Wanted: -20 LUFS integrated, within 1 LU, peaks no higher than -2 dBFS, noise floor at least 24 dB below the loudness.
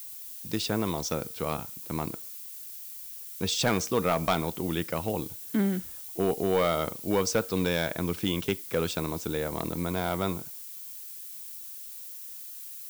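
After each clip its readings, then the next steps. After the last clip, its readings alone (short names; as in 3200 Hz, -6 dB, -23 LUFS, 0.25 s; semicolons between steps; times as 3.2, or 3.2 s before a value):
clipped 0.4%; flat tops at -17.5 dBFS; noise floor -42 dBFS; noise floor target -55 dBFS; loudness -30.5 LUFS; peak -17.5 dBFS; loudness target -20.0 LUFS
-> clip repair -17.5 dBFS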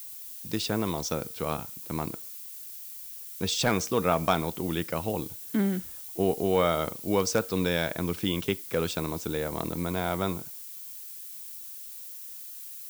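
clipped 0.0%; noise floor -42 dBFS; noise floor target -54 dBFS
-> noise print and reduce 12 dB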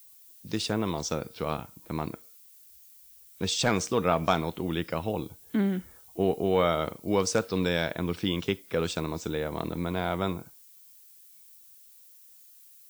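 noise floor -54 dBFS; loudness -29.5 LUFS; peak -9.5 dBFS; loudness target -20.0 LUFS
-> gain +9.5 dB; limiter -2 dBFS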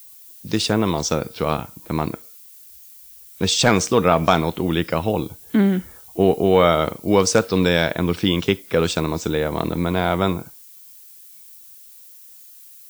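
loudness -20.0 LUFS; peak -2.0 dBFS; noise floor -45 dBFS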